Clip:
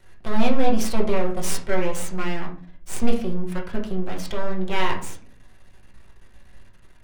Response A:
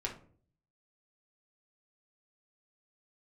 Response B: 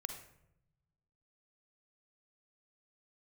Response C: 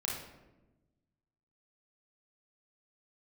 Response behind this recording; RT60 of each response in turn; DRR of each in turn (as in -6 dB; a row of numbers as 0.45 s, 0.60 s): A; 0.50 s, 0.80 s, 1.1 s; -1.0 dB, 5.0 dB, -4.0 dB